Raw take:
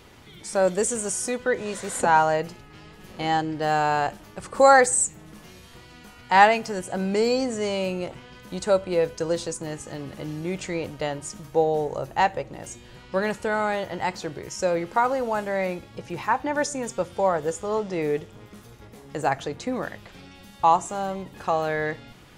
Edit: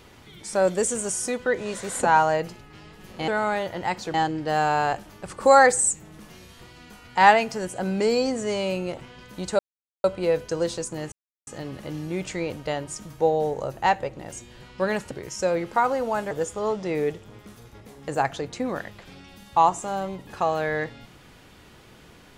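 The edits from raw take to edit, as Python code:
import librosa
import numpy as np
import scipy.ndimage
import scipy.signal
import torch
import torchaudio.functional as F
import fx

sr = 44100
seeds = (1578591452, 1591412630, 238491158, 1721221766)

y = fx.edit(x, sr, fx.insert_silence(at_s=8.73, length_s=0.45),
    fx.insert_silence(at_s=9.81, length_s=0.35),
    fx.move(start_s=13.45, length_s=0.86, to_s=3.28),
    fx.cut(start_s=15.51, length_s=1.87), tone=tone)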